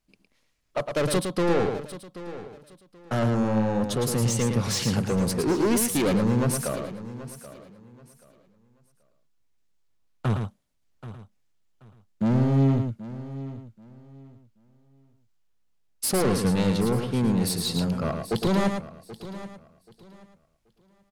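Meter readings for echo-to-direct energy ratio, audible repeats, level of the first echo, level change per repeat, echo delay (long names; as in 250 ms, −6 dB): −5.5 dB, 5, −6.0 dB, repeats not evenly spaced, 110 ms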